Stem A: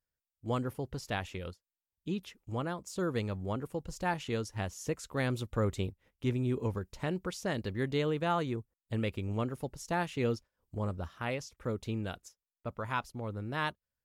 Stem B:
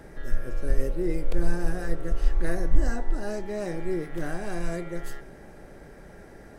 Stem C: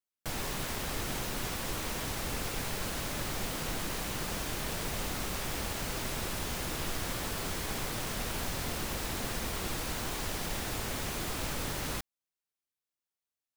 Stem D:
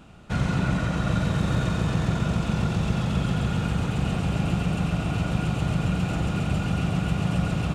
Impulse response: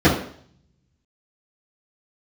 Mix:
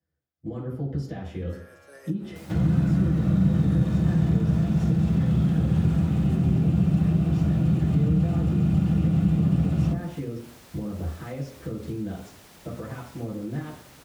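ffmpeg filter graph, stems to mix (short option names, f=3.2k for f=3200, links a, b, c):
-filter_complex "[0:a]acompressor=threshold=-38dB:ratio=6,alimiter=level_in=10.5dB:limit=-24dB:level=0:latency=1:release=25,volume=-10.5dB,volume=-7.5dB,asplit=2[a][b];[b]volume=-9.5dB[c];[1:a]highpass=680,adelay=1250,volume=-6dB[d];[2:a]adelay=2100,volume=-14dB[e];[3:a]adelay=2200,volume=-5dB,asplit=2[f][g];[g]volume=-23dB[h];[4:a]atrim=start_sample=2205[i];[c][h]amix=inputs=2:normalize=0[j];[j][i]afir=irnorm=-1:irlink=0[k];[a][d][e][f][k]amix=inputs=5:normalize=0,highpass=63,acrossover=split=230[l][m];[m]acompressor=threshold=-34dB:ratio=6[n];[l][n]amix=inputs=2:normalize=0"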